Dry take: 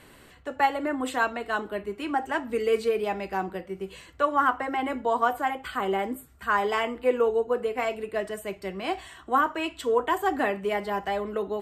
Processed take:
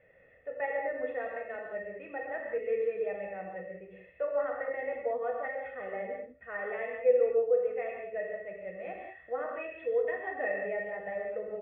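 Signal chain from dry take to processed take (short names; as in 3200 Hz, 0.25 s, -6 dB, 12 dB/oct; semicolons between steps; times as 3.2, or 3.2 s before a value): vocal tract filter e; comb 1.5 ms, depth 59%; non-linear reverb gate 0.23 s flat, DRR -0.5 dB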